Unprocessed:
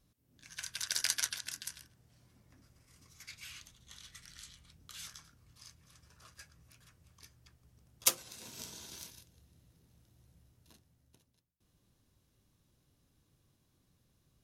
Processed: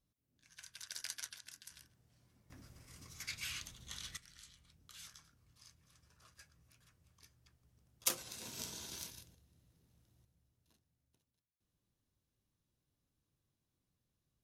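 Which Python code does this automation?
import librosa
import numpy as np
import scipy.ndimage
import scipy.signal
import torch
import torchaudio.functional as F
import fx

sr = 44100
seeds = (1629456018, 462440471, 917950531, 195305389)

y = fx.gain(x, sr, db=fx.steps((0.0, -12.0), (1.71, -5.5), (2.5, 6.0), (4.17, -6.5), (8.1, 1.5), (9.35, -5.5), (10.25, -12.5)))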